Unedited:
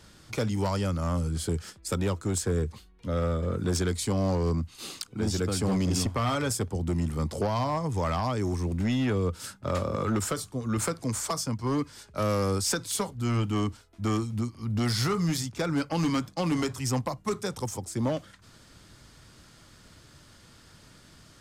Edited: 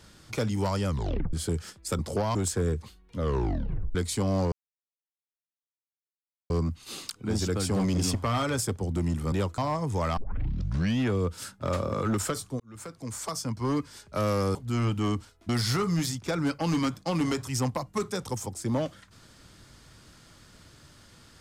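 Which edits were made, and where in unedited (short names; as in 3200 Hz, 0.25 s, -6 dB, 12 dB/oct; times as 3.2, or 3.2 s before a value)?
0.88 tape stop 0.45 s
1.99–2.25 swap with 7.24–7.6
3.09 tape stop 0.76 s
4.42 insert silence 1.98 s
8.19 tape start 0.83 s
10.62–11.64 fade in
12.57–13.07 cut
14.01–14.8 cut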